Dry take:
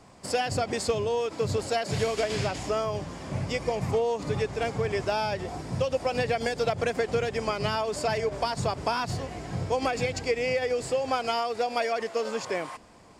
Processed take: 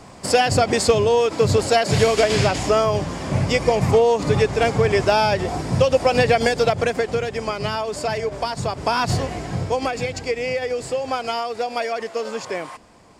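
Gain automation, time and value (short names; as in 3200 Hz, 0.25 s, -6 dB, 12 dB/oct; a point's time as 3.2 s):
6.41 s +10.5 dB
7.24 s +3.5 dB
8.73 s +3.5 dB
9.13 s +11 dB
9.94 s +3 dB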